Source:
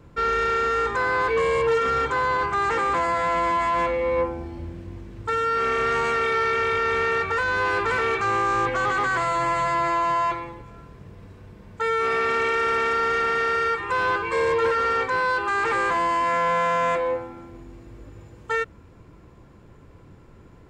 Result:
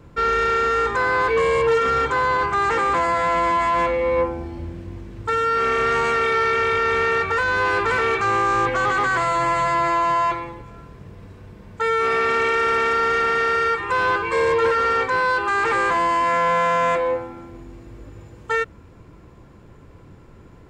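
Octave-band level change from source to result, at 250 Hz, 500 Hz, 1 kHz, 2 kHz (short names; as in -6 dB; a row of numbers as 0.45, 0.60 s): +3.0, +3.0, +3.0, +3.0 dB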